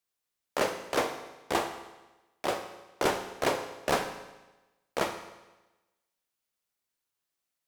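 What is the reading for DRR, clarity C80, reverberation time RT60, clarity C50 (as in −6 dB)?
6.5 dB, 10.5 dB, 1.1 s, 9.0 dB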